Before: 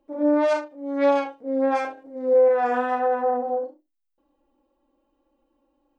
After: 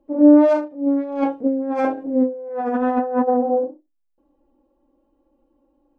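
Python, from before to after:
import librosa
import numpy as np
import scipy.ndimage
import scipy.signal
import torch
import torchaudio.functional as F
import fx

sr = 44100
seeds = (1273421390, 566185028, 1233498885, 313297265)

y = fx.tilt_shelf(x, sr, db=7.5, hz=1100.0)
y = fx.over_compress(y, sr, threshold_db=-25.0, ratio=-1.0, at=(0.86, 3.27), fade=0.02)
y = fx.dynamic_eq(y, sr, hz=210.0, q=0.87, threshold_db=-38.0, ratio=4.0, max_db=7)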